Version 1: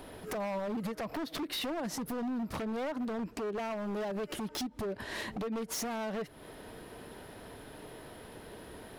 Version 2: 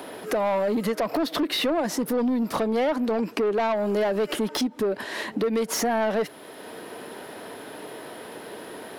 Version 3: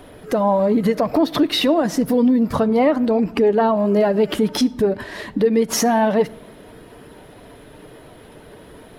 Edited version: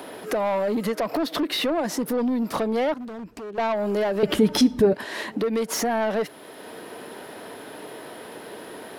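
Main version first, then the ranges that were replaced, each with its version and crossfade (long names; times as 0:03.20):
2
0:02.94–0:03.58: punch in from 1
0:04.23–0:04.93: punch in from 3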